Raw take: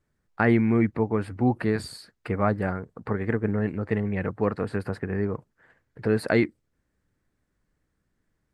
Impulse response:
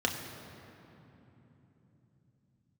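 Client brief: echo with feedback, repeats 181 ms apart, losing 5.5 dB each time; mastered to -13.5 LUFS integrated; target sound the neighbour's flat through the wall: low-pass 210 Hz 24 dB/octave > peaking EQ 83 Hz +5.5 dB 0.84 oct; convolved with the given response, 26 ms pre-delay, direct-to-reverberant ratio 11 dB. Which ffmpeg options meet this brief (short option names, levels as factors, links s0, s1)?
-filter_complex "[0:a]aecho=1:1:181|362|543|724|905|1086|1267:0.531|0.281|0.149|0.079|0.0419|0.0222|0.0118,asplit=2[s0][s1];[1:a]atrim=start_sample=2205,adelay=26[s2];[s1][s2]afir=irnorm=-1:irlink=0,volume=0.106[s3];[s0][s3]amix=inputs=2:normalize=0,lowpass=f=210:w=0.5412,lowpass=f=210:w=1.3066,equalizer=f=83:t=o:w=0.84:g=5.5,volume=5.01"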